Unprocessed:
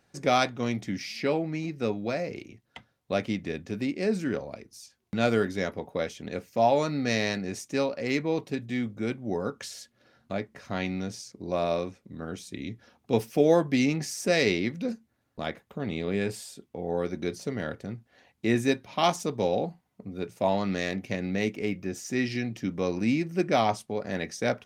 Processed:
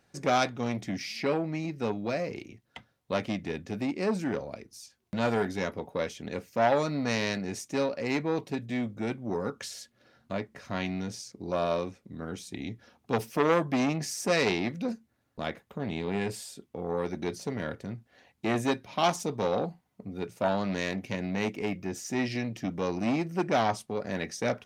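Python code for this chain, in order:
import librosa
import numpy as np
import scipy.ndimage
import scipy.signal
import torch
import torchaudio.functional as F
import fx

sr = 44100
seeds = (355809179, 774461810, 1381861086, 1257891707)

y = fx.transformer_sat(x, sr, knee_hz=1200.0)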